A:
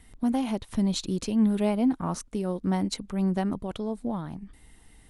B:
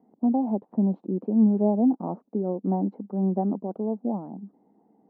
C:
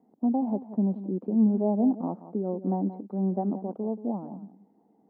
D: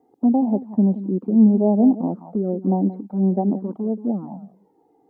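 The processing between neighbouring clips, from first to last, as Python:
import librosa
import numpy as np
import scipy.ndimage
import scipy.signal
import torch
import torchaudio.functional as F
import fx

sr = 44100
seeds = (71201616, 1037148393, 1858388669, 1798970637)

y1 = scipy.signal.sosfilt(scipy.signal.cheby1(3, 1.0, [200.0, 820.0], 'bandpass', fs=sr, output='sos'), x)
y1 = F.gain(torch.from_numpy(y1), 3.5).numpy()
y2 = y1 + 10.0 ** (-13.5 / 20.0) * np.pad(y1, (int(179 * sr / 1000.0), 0))[:len(y1)]
y2 = F.gain(torch.from_numpy(y2), -2.5).numpy()
y3 = fx.env_flanger(y2, sr, rest_ms=2.5, full_db=-23.0)
y3 = F.gain(torch.from_numpy(y3), 8.5).numpy()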